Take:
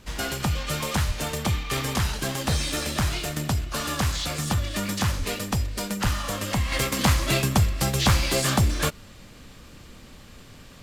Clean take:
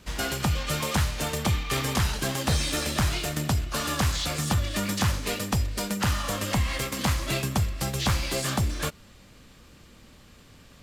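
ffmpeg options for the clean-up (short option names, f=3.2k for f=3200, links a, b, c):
-filter_complex "[0:a]asplit=3[a][b][c];[a]afade=t=out:st=1.07:d=0.02[d];[b]highpass=f=140:w=0.5412,highpass=f=140:w=1.3066,afade=t=in:st=1.07:d=0.02,afade=t=out:st=1.19:d=0.02[e];[c]afade=t=in:st=1.19:d=0.02[f];[d][e][f]amix=inputs=3:normalize=0,asplit=3[g][h][i];[g]afade=t=out:st=5.18:d=0.02[j];[h]highpass=f=140:w=0.5412,highpass=f=140:w=1.3066,afade=t=in:st=5.18:d=0.02,afade=t=out:st=5.3:d=0.02[k];[i]afade=t=in:st=5.3:d=0.02[l];[j][k][l]amix=inputs=3:normalize=0,asplit=3[m][n][o];[m]afade=t=out:st=6.03:d=0.02[p];[n]highpass=f=140:w=0.5412,highpass=f=140:w=1.3066,afade=t=in:st=6.03:d=0.02,afade=t=out:st=6.15:d=0.02[q];[o]afade=t=in:st=6.15:d=0.02[r];[p][q][r]amix=inputs=3:normalize=0,agate=range=-21dB:threshold=-38dB,asetnsamples=n=441:p=0,asendcmd='6.72 volume volume -5dB',volume=0dB"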